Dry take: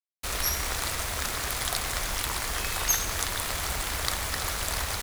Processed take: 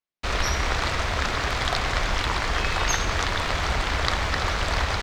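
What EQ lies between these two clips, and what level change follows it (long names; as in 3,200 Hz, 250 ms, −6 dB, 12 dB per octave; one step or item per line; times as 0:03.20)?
high-frequency loss of the air 170 metres
+8.5 dB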